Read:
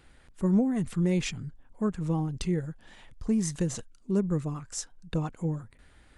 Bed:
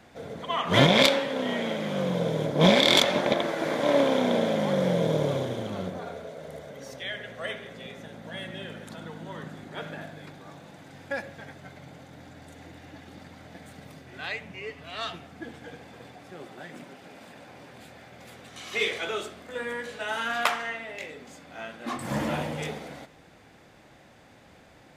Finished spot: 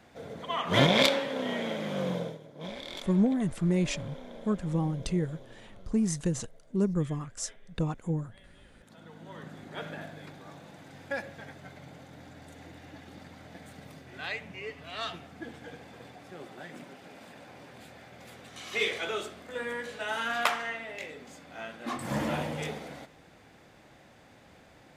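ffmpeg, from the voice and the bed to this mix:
ffmpeg -i stem1.wav -i stem2.wav -filter_complex "[0:a]adelay=2650,volume=-0.5dB[link_01];[1:a]volume=16.5dB,afade=type=out:start_time=2.11:duration=0.28:silence=0.11885,afade=type=in:start_time=8.71:duration=1.09:silence=0.1[link_02];[link_01][link_02]amix=inputs=2:normalize=0" out.wav

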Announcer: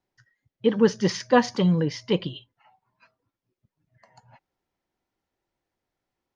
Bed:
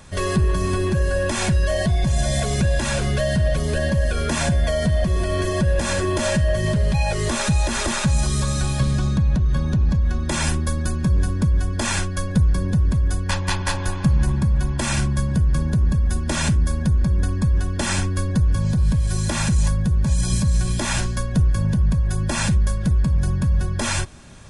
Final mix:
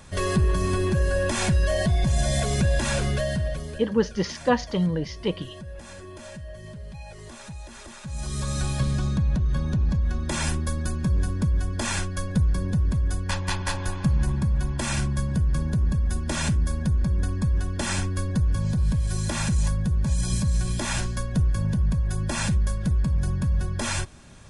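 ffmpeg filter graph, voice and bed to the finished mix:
ffmpeg -i stem1.wav -i stem2.wav -filter_complex "[0:a]adelay=3150,volume=-3dB[link_01];[1:a]volume=13dB,afade=type=out:start_time=2.99:duration=0.87:silence=0.133352,afade=type=in:start_time=8.03:duration=0.57:silence=0.16788[link_02];[link_01][link_02]amix=inputs=2:normalize=0" out.wav

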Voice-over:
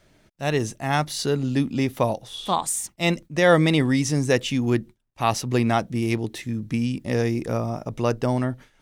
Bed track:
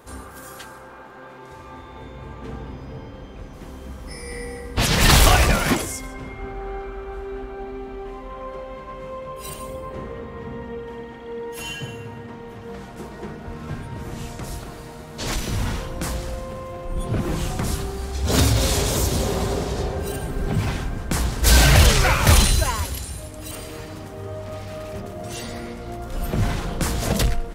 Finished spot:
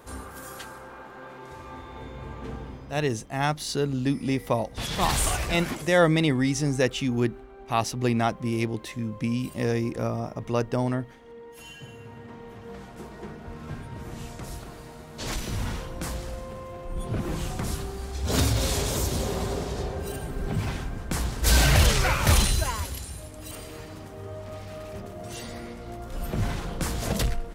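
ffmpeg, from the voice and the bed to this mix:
ffmpeg -i stem1.wav -i stem2.wav -filter_complex "[0:a]adelay=2500,volume=-3dB[link_01];[1:a]volume=6dB,afade=type=out:start_time=2.4:duration=0.76:silence=0.266073,afade=type=in:start_time=11.74:duration=0.64:silence=0.421697[link_02];[link_01][link_02]amix=inputs=2:normalize=0" out.wav

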